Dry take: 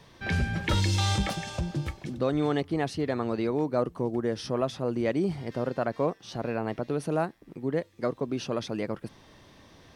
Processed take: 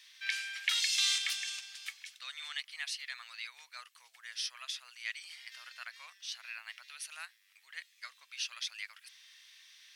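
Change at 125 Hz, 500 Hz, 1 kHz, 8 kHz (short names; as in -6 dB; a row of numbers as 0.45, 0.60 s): under -40 dB, under -40 dB, -19.5 dB, +3.5 dB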